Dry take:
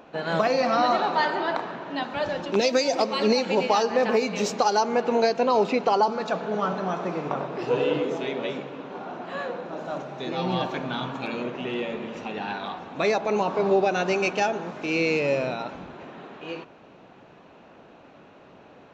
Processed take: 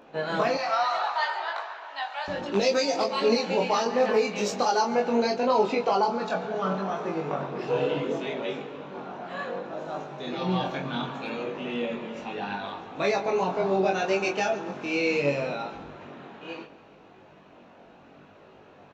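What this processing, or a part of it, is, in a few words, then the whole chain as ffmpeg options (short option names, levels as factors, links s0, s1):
double-tracked vocal: -filter_complex "[0:a]asplit=2[s0][s1];[s1]adelay=21,volume=0.531[s2];[s0][s2]amix=inputs=2:normalize=0,flanger=delay=18.5:depth=3.9:speed=0.7,asettb=1/sr,asplit=3[s3][s4][s5];[s3]atrim=end=0.574[s6];[s4]atrim=start=0.57:end=2.28,asetpts=PTS-STARTPTS,afade=t=in:d=0.004:c=qsin,afade=t=out:st=1.706:d=0.004:c=qsin,highpass=f=710:w=0.5412,highpass=f=710:w=1.3066[s7];[s5]atrim=start=2.276[s8];[s6][s7]acrossfade=d=0.004:c1=hsin:c2=qsin[s9];[s9][s8]acrossfade=d=0.004:c1=qsin:c2=hsin,aecho=1:1:139|278|417|556:0.126|0.0617|0.0302|0.0148"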